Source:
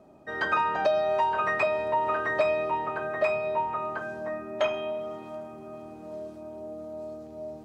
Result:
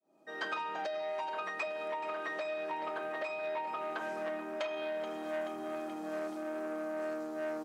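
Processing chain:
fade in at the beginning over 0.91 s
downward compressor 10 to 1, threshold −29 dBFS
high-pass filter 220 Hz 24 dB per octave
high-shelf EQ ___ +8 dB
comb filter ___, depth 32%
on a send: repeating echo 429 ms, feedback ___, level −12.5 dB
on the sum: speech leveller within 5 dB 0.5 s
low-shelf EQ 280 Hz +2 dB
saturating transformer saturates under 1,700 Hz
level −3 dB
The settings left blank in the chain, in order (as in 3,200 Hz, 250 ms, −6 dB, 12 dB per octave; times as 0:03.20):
3,000 Hz, 6.1 ms, 57%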